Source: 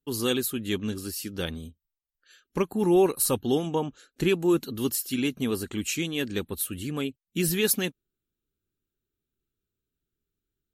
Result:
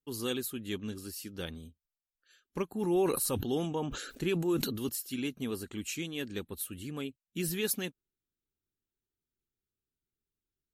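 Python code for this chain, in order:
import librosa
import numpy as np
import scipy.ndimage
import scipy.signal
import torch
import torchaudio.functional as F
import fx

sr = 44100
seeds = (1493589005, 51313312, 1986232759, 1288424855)

y = fx.sustainer(x, sr, db_per_s=44.0, at=(2.69, 4.89))
y = y * librosa.db_to_amplitude(-8.0)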